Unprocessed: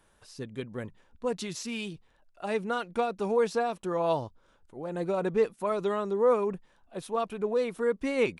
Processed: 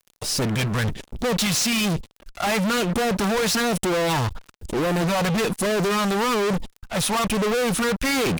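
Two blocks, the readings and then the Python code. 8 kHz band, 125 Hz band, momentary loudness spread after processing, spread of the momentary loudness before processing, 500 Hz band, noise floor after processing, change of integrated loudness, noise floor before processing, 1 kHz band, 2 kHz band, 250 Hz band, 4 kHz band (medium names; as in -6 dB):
+20.5 dB, +16.0 dB, 7 LU, 16 LU, +3.0 dB, -64 dBFS, +7.5 dB, -65 dBFS, +7.5 dB, +13.5 dB, +11.5 dB, +18.5 dB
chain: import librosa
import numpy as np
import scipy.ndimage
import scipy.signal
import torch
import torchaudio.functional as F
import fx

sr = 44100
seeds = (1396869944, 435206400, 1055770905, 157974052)

y = fx.phaser_stages(x, sr, stages=2, low_hz=320.0, high_hz=1600.0, hz=1.1, feedback_pct=10)
y = fx.fuzz(y, sr, gain_db=55.0, gate_db=-59.0)
y = y * 10.0 ** (-7.5 / 20.0)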